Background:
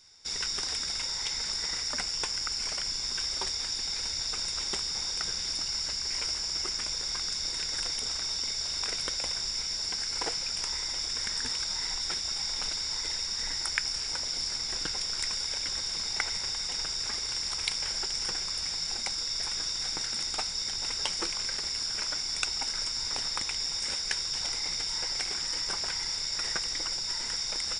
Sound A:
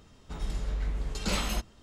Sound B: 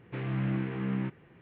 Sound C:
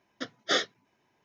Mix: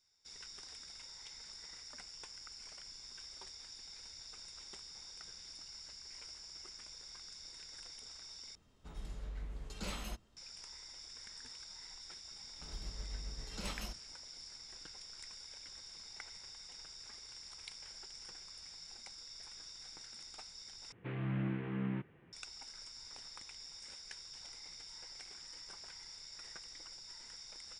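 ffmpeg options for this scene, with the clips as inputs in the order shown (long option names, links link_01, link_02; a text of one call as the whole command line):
ffmpeg -i bed.wav -i cue0.wav -i cue1.wav -filter_complex "[1:a]asplit=2[link_01][link_02];[0:a]volume=-19dB[link_03];[link_02]tremolo=f=7.3:d=0.46[link_04];[link_03]asplit=3[link_05][link_06][link_07];[link_05]atrim=end=8.554[link_08];[link_01]atrim=end=1.82,asetpts=PTS-STARTPTS,volume=-12.5dB[link_09];[link_06]atrim=start=10.366:end=20.924[link_10];[2:a]atrim=end=1.41,asetpts=PTS-STARTPTS,volume=-6dB[link_11];[link_07]atrim=start=22.326[link_12];[link_04]atrim=end=1.82,asetpts=PTS-STARTPTS,volume=-11dB,afade=type=in:duration=0.004:curve=hsin,afade=type=out:start_time=1.816:duration=0.004:curve=hsin,adelay=12320[link_13];[link_08][link_09]acrossfade=duration=0.004:curve1=hsin:curve2=hsin[link_14];[link_14][link_10]acrossfade=duration=0.004:curve1=hsin:curve2=hsin[link_15];[link_15][link_11]acrossfade=duration=0.004:curve1=hsin:curve2=hsin[link_16];[link_16][link_12]acrossfade=duration=0.004:curve1=hsin:curve2=hsin[link_17];[link_17][link_13]amix=inputs=2:normalize=0" out.wav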